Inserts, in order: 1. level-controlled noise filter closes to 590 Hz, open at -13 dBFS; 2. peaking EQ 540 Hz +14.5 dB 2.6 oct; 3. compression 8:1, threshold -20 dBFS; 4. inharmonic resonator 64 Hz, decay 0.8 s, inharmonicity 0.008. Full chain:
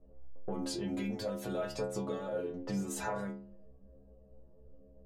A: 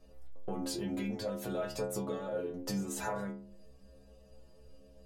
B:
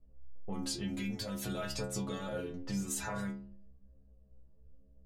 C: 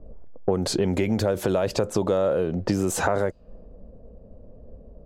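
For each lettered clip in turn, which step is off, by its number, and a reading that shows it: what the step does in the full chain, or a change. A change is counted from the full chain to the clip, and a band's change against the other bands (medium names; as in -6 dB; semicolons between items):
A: 1, 8 kHz band +2.0 dB; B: 2, 500 Hz band -7.0 dB; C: 4, 125 Hz band +2.5 dB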